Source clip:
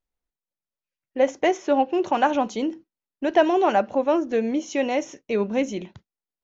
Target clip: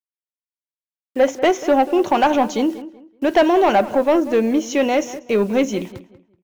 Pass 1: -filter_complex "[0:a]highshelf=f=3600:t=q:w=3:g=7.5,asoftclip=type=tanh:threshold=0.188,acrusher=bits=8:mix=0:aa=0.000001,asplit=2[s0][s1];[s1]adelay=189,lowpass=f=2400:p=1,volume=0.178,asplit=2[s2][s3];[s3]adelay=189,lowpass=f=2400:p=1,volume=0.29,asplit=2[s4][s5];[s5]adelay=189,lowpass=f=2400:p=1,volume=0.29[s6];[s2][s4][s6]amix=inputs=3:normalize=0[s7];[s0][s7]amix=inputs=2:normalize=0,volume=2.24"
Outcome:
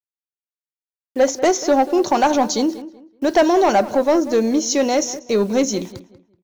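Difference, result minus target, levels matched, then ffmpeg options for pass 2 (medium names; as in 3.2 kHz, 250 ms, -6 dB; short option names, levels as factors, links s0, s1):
8 kHz band +10.0 dB
-filter_complex "[0:a]asoftclip=type=tanh:threshold=0.188,acrusher=bits=8:mix=0:aa=0.000001,asplit=2[s0][s1];[s1]adelay=189,lowpass=f=2400:p=1,volume=0.178,asplit=2[s2][s3];[s3]adelay=189,lowpass=f=2400:p=1,volume=0.29,asplit=2[s4][s5];[s5]adelay=189,lowpass=f=2400:p=1,volume=0.29[s6];[s2][s4][s6]amix=inputs=3:normalize=0[s7];[s0][s7]amix=inputs=2:normalize=0,volume=2.24"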